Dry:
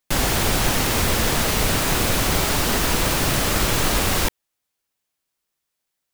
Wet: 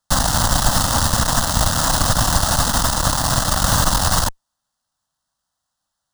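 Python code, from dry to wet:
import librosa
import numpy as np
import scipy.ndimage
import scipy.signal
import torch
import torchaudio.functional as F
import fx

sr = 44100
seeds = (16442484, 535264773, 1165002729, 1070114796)

y = fx.cheby_harmonics(x, sr, harmonics=(6,), levels_db=(-13,), full_scale_db=-5.5)
y = np.repeat(y[::3], 3)[:len(y)]
y = fx.fixed_phaser(y, sr, hz=970.0, stages=4)
y = y * librosa.db_to_amplitude(4.0)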